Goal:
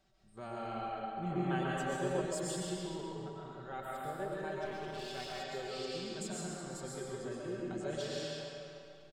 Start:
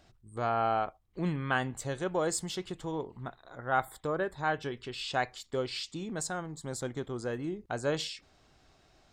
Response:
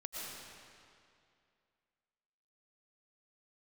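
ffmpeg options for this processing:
-filter_complex "[0:a]aecho=1:1:5.2:0.65[link_01];[1:a]atrim=start_sample=2205[link_02];[link_01][link_02]afir=irnorm=-1:irlink=0,acrossover=split=650|1900[link_03][link_04][link_05];[link_04]acompressor=threshold=-46dB:ratio=6[link_06];[link_03][link_06][link_05]amix=inputs=3:normalize=0,asettb=1/sr,asplit=3[link_07][link_08][link_09];[link_07]atrim=end=1.304[link_10];[link_08]atrim=start=1.3:end=2.21,asetpts=PTS-STARTPTS,afade=type=in:duration=0.004:curve=qsin,afade=type=out:start_time=0.906:duration=0.004:curve=qsin,equalizer=frequency=610:width_type=o:width=2.6:gain=7[link_11];[link_09]atrim=start=2.206[link_12];[link_10][link_11]acrossfade=duration=0.004:curve1=hsin:curve2=qsin[link_13];[link_13][link_12]acrossfade=duration=0.004:curve1=qsin:curve2=hsin,asplit=2[link_14][link_15];[link_15]aecho=0:1:138:0.447[link_16];[link_14][link_16]amix=inputs=2:normalize=0,asettb=1/sr,asplit=3[link_17][link_18][link_19];[link_17]atrim=end=4.654[link_20];[link_18]atrim=start=4.65:end=5.41,asetpts=PTS-STARTPTS,afade=type=in:duration=0.004:curve=qsin,afade=type=out:start_time=0.756:duration=0.004:curve=qsin,aeval=exprs='clip(val(0),-1,0.015)':channel_layout=same[link_21];[link_19]atrim=start=5.406[link_22];[link_20][link_21]acrossfade=duration=0.004:curve1=hsin:curve2=qsin[link_23];[link_23][link_22]acrossfade=duration=0.004:curve1=qsin:curve2=hsin,volume=-6.5dB"

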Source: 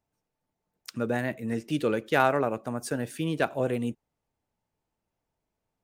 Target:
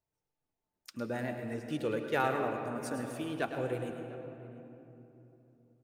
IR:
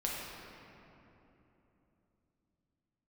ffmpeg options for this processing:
-filter_complex "[0:a]asplit=2[link_01][link_02];[link_02]adelay=699.7,volume=-18dB,highshelf=frequency=4000:gain=-15.7[link_03];[link_01][link_03]amix=inputs=2:normalize=0,flanger=delay=1.9:depth=1.6:regen=-49:speed=0.51:shape=triangular,asplit=2[link_04][link_05];[1:a]atrim=start_sample=2205,adelay=106[link_06];[link_05][link_06]afir=irnorm=-1:irlink=0,volume=-9dB[link_07];[link_04][link_07]amix=inputs=2:normalize=0,volume=-4dB"

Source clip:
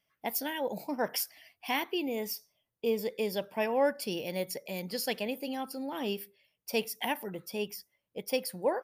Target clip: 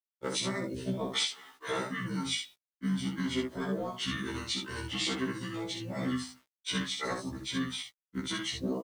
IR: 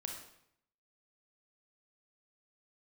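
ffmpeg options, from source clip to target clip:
-filter_complex "[0:a]asetrate=27781,aresample=44100,atempo=1.5874,highpass=140,acrossover=split=440|3000[link_01][link_02][link_03];[link_01]acompressor=threshold=-31dB:ratio=4[link_04];[link_04][link_02][link_03]amix=inputs=3:normalize=0,agate=range=-33dB:threshold=-54dB:ratio=3:detection=peak,asplit=2[link_05][link_06];[link_06]asoftclip=type=hard:threshold=-26dB,volume=-9dB[link_07];[link_05][link_07]amix=inputs=2:normalize=0,highshelf=frequency=7400:gain=-10,asplit=2[link_08][link_09];[link_09]asetrate=29433,aresample=44100,atempo=1.49831,volume=-2dB[link_10];[link_08][link_10]amix=inputs=2:normalize=0,acompressor=threshold=-31dB:ratio=3,equalizer=frequency=3900:width=1.6:gain=11,aecho=1:1:11|63:0.596|0.596,acrusher=bits=9:mix=0:aa=0.000001,afftfilt=real='re*1.73*eq(mod(b,3),0)':imag='im*1.73*eq(mod(b,3),0)':win_size=2048:overlap=0.75"

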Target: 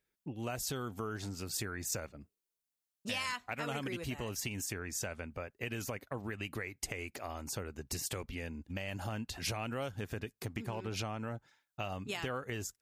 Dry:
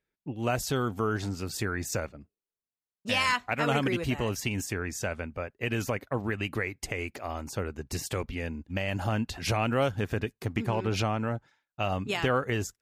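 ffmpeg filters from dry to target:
ffmpeg -i in.wav -af "acompressor=threshold=-39dB:ratio=2.5,highshelf=frequency=4500:gain=8,volume=-1.5dB" out.wav

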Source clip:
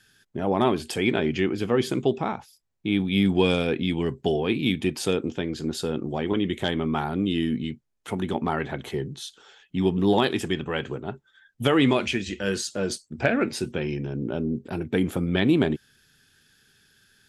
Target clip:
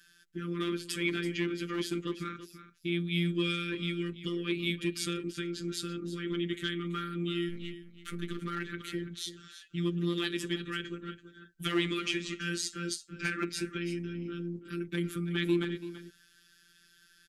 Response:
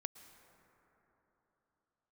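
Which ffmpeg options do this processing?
-filter_complex "[0:a]asettb=1/sr,asplit=3[link_01][link_02][link_03];[link_01]atrim=end=7.494[link_04];[link_02]atrim=start=7.49:end=8.39,asetpts=PTS-STARTPTS,afade=type=in:duration=0.004:curve=qsin,afade=type=out:start_time=0.896:duration=0.004:curve=qsin,aeval=exprs='if(lt(val(0),0),0.447*val(0),val(0))':channel_layout=same[link_05];[link_03]atrim=start=8.386[link_06];[link_04][link_05]acrossfade=duration=0.004:curve1=hsin:curve2=qsin[link_07];[link_07][link_06]acrossfade=duration=0.004:curve1=qsin:curve2=hsin,asplit=2[link_08][link_09];[link_09]acompressor=threshold=-32dB:ratio=6,volume=-1.5dB[link_10];[link_08][link_10]amix=inputs=2:normalize=0,asuperstop=centerf=710:order=20:qfactor=1,lowshelf=frequency=83:gain=8.5,acrossover=split=420|1600[link_11][link_12][link_13];[link_12]aeval=exprs='0.0473*(abs(mod(val(0)/0.0473+3,4)-2)-1)':channel_layout=same[link_14];[link_11][link_14][link_13]amix=inputs=3:normalize=0,afftfilt=real='hypot(re,im)*cos(PI*b)':imag='0':win_size=1024:overlap=0.75,lowshelf=frequency=230:gain=-10,aecho=1:1:333:0.211,volume=-3.5dB"

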